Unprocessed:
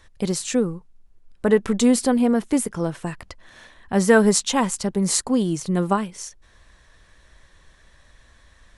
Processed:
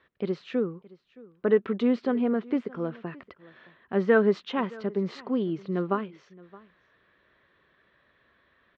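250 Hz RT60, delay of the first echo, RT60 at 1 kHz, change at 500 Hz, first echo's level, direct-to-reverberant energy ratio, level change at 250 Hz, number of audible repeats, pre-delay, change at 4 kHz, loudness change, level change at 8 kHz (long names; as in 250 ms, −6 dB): no reverb audible, 619 ms, no reverb audible, −4.0 dB, −22.0 dB, no reverb audible, −7.5 dB, 1, no reverb audible, −14.5 dB, −6.5 dB, below −35 dB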